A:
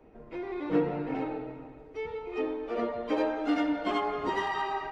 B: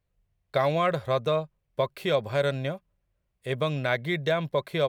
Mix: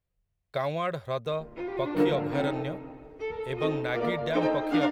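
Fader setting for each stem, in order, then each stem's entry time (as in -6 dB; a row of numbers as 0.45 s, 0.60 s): +2.0 dB, -5.5 dB; 1.25 s, 0.00 s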